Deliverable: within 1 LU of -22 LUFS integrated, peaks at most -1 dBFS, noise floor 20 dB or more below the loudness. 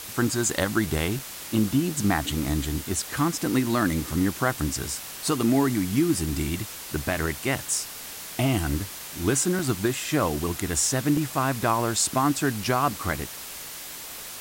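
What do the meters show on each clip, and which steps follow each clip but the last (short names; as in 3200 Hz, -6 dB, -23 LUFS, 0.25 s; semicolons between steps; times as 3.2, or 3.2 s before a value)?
dropouts 4; longest dropout 3.5 ms; noise floor -39 dBFS; noise floor target -46 dBFS; loudness -25.5 LUFS; peak -10.0 dBFS; loudness target -22.0 LUFS
-> interpolate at 1.19/9.59/11.17/12.64, 3.5 ms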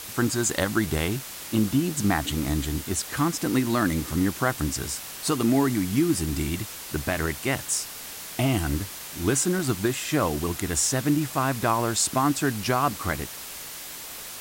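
dropouts 0; noise floor -39 dBFS; noise floor target -46 dBFS
-> noise print and reduce 7 dB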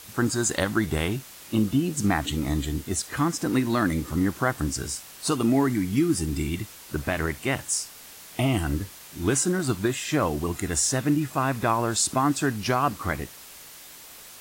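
noise floor -46 dBFS; loudness -25.5 LUFS; peak -10.5 dBFS; loudness target -22.0 LUFS
-> gain +3.5 dB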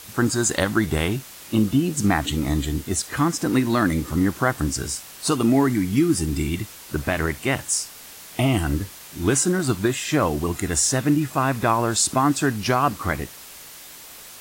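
loudness -22.0 LUFS; peak -7.0 dBFS; noise floor -42 dBFS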